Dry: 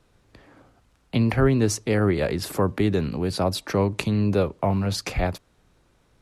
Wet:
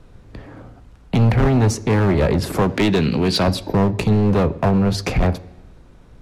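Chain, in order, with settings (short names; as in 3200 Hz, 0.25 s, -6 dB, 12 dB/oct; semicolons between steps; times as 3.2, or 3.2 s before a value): 2.61–3.48 weighting filter D; 3.65–3.99 spectral gain 1000–12000 Hz -26 dB; tilt -2 dB/oct; in parallel at +0.5 dB: compressor 5:1, threshold -29 dBFS, peak gain reduction 17.5 dB; on the sum: hard clip -16 dBFS, distortion -8 dB; on a send at -13 dB: reverb RT60 0.85 s, pre-delay 3 ms; on the sum: gain +3.5 dB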